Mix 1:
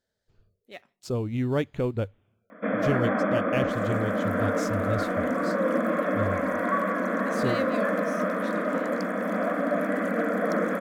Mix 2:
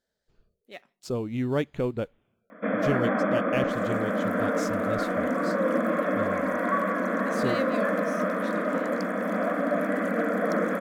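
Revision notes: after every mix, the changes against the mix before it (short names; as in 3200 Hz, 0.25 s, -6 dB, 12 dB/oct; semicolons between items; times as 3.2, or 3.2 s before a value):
speech: add bell 99 Hz -12.5 dB 0.37 oct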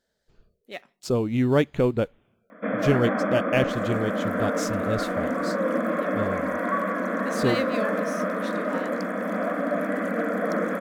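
speech +6.0 dB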